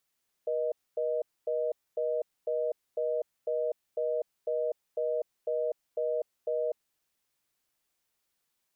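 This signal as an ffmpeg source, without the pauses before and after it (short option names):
-f lavfi -i "aevalsrc='0.0316*(sin(2*PI*480*t)+sin(2*PI*620*t))*clip(min(mod(t,0.5),0.25-mod(t,0.5))/0.005,0,1)':d=6.37:s=44100"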